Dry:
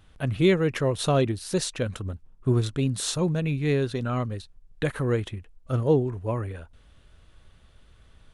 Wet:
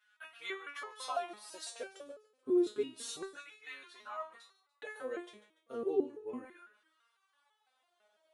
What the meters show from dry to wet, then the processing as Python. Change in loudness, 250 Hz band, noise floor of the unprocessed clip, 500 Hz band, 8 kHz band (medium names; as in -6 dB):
-13.0 dB, -13.0 dB, -56 dBFS, -11.5 dB, -14.0 dB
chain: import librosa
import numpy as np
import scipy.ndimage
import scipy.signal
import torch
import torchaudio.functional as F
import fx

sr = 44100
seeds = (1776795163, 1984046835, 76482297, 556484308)

y = fx.filter_lfo_highpass(x, sr, shape='saw_down', hz=0.31, low_hz=270.0, high_hz=1600.0, q=3.5)
y = fx.echo_thinned(y, sr, ms=145, feedback_pct=46, hz=500.0, wet_db=-16.5)
y = fx.resonator_held(y, sr, hz=6.0, low_hz=210.0, high_hz=430.0)